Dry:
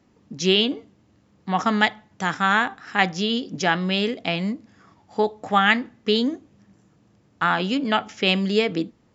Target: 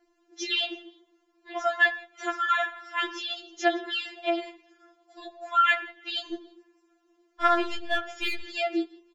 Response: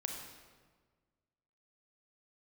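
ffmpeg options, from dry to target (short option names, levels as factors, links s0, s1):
-filter_complex "[0:a]asplit=3[s0][s1][s2];[s1]adelay=163,afreqshift=45,volume=0.0631[s3];[s2]adelay=326,afreqshift=90,volume=0.0221[s4];[s0][s3][s4]amix=inputs=3:normalize=0,asettb=1/sr,asplit=3[s5][s6][s7];[s5]atrim=end=6.314[s8];[s6]atrim=start=6.31:end=8.43,asetpts=PTS-STARTPTS,afade=t=in:d=0.004:c=qsin,afade=t=out:st=2.116:d=0.004:c=qsin,aeval=exprs='0.562*(cos(1*acos(clip(val(0)/0.562,-1,1)))-cos(1*PI/2))+0.02*(cos(8*acos(clip(val(0)/0.562,-1,1)))-cos(8*PI/2))':c=same[s9];[s7]atrim=start=8.426[s10];[s8][s9]acrossfade=d=0.004:c1=hsin:c2=qsin[s11];[s11][s10]acrossfade=d=0.004:c1=qsin:c2=hsin,asplit=2[s12][s13];[1:a]atrim=start_sample=2205,afade=t=out:st=0.23:d=0.01,atrim=end_sample=10584,lowpass=3700[s14];[s13][s14]afir=irnorm=-1:irlink=0,volume=0.376[s15];[s12][s15]amix=inputs=2:normalize=0,afftfilt=real='re*4*eq(mod(b,16),0)':imag='im*4*eq(mod(b,16),0)':win_size=2048:overlap=0.75,volume=0.596"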